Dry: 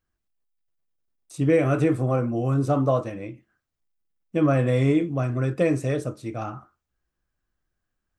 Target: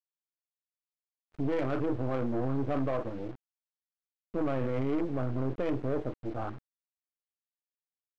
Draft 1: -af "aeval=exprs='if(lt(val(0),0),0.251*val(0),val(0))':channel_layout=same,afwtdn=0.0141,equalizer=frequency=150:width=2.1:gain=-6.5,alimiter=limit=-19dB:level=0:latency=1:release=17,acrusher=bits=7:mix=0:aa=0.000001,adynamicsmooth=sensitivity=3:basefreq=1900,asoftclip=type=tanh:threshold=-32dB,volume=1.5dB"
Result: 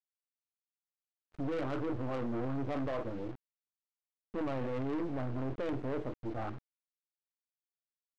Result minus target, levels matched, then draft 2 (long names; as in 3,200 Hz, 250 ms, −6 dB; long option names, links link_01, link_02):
soft clipping: distortion +9 dB
-af "aeval=exprs='if(lt(val(0),0),0.251*val(0),val(0))':channel_layout=same,afwtdn=0.0141,equalizer=frequency=150:width=2.1:gain=-6.5,alimiter=limit=-19dB:level=0:latency=1:release=17,acrusher=bits=7:mix=0:aa=0.000001,adynamicsmooth=sensitivity=3:basefreq=1900,asoftclip=type=tanh:threshold=-23dB,volume=1.5dB"